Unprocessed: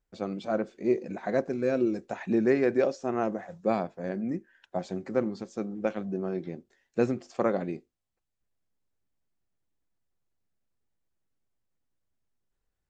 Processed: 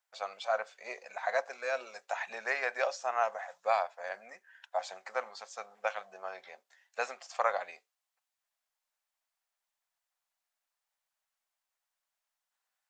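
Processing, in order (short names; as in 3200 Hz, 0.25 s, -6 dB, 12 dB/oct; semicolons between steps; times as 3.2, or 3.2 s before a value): inverse Chebyshev high-pass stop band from 350 Hz, stop band 40 dB; gain +4.5 dB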